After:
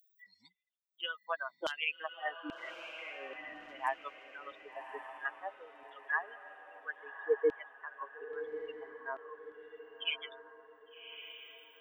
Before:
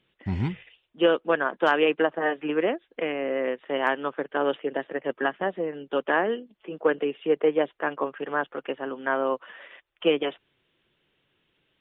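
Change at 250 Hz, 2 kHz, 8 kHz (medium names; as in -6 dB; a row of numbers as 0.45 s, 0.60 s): -23.5 dB, -10.0 dB, no reading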